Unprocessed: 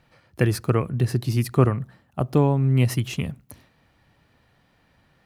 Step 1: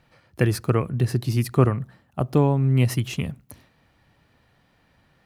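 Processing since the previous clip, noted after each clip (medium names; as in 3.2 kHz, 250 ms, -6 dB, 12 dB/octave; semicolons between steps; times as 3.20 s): no audible change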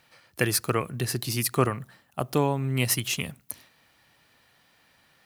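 tilt EQ +3 dB/octave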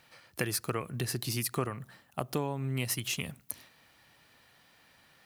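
compression 2.5:1, threshold -32 dBFS, peak gain reduction 11 dB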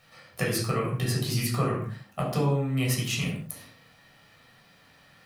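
reverberation, pre-delay 10 ms, DRR -4 dB; trim -2.5 dB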